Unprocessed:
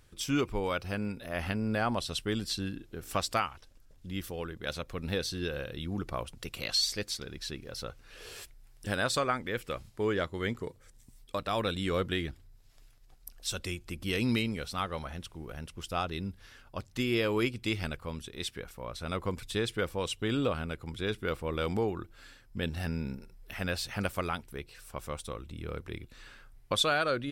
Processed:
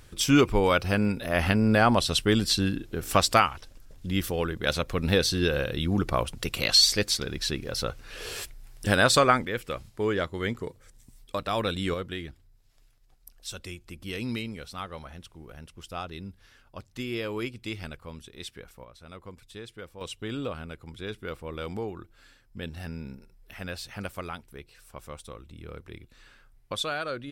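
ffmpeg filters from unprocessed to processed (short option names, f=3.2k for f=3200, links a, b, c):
-af "asetnsamples=n=441:p=0,asendcmd='9.45 volume volume 3dB;11.94 volume volume -3.5dB;18.84 volume volume -11dB;20.01 volume volume -3.5dB',volume=9.5dB"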